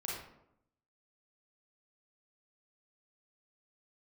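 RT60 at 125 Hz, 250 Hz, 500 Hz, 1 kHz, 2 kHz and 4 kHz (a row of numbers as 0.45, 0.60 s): 0.95, 0.95, 0.85, 0.75, 0.60, 0.45 s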